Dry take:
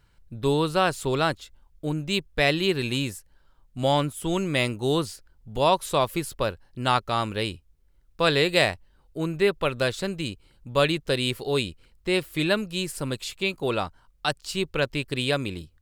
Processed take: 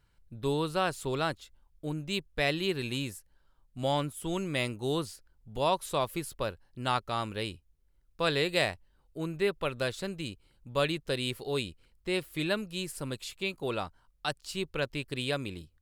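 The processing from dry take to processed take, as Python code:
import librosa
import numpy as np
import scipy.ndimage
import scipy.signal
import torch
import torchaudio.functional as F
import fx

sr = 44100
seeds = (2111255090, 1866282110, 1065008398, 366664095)

y = fx.peak_eq(x, sr, hz=11000.0, db=3.5, octaves=0.28)
y = y * 10.0 ** (-7.0 / 20.0)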